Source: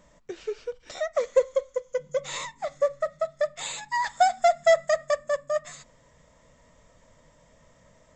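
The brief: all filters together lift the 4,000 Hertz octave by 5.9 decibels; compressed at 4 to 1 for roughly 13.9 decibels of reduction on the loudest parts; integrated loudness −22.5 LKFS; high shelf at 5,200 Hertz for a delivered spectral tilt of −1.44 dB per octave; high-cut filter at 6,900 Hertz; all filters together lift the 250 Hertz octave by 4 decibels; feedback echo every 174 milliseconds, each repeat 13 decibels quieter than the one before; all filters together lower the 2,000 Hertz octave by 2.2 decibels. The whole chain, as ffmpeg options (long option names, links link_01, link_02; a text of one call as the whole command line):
ffmpeg -i in.wav -af "lowpass=6900,equalizer=frequency=250:width_type=o:gain=7,equalizer=frequency=2000:width_type=o:gain=-4.5,equalizer=frequency=4000:width_type=o:gain=5.5,highshelf=frequency=5200:gain=7.5,acompressor=threshold=-31dB:ratio=4,aecho=1:1:174|348|522:0.224|0.0493|0.0108,volume=13dB" out.wav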